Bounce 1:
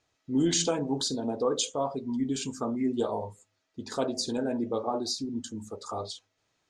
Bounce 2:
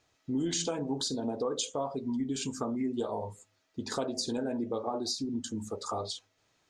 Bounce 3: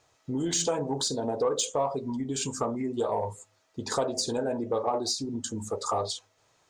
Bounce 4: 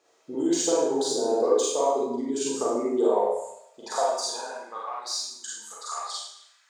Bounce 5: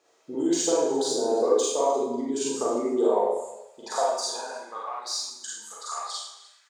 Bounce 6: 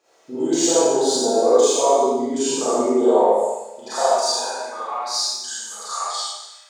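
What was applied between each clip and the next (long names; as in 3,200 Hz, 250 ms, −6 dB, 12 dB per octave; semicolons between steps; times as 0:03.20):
downward compressor 3 to 1, threshold −35 dBFS, peak gain reduction 10.5 dB; level +3.5 dB
graphic EQ with 10 bands 125 Hz +4 dB, 250 Hz −4 dB, 500 Hz +5 dB, 1,000 Hz +6 dB, 8,000 Hz +6 dB; in parallel at −6.5 dB: soft clipping −24.5 dBFS, distortion −14 dB; on the sum: level −1.5 dB
four-comb reverb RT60 0.71 s, combs from 33 ms, DRR −5.5 dB; dynamic equaliser 2,700 Hz, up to −4 dB, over −41 dBFS, Q 0.86; high-pass filter sweep 350 Hz → 1,600 Hz, 0:03.06–0:05.06; level −4.5 dB
single-tap delay 303 ms −20.5 dB
four-comb reverb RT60 0.72 s, combs from 28 ms, DRR −7.5 dB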